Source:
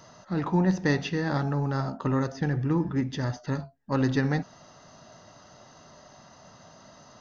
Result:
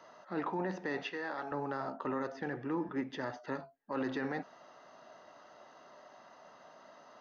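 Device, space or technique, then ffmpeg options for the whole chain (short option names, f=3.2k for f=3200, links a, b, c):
DJ mixer with the lows and highs turned down: -filter_complex "[0:a]acrossover=split=280 3300:gain=0.0708 1 0.178[a][b][c];[a][b][c]amix=inputs=3:normalize=0,alimiter=limit=-24dB:level=0:latency=1:release=17,asettb=1/sr,asplit=3[d][e][f];[d]atrim=end=1.034[g];[e]atrim=start=1.03:end=1.52,asetpts=PTS-STARTPTS,afade=t=in:d=0.004:c=qsin,afade=t=out:st=0.486:d=0.004:c=qsin,highpass=f=590:p=1[h];[f]atrim=start=1.516[i];[g][h]acrossfade=d=0.004:c1=hsin:c2=qsin[j];[j][i]acrossfade=d=0.004:c1=qsin:c2=hsin,volume=-2.5dB"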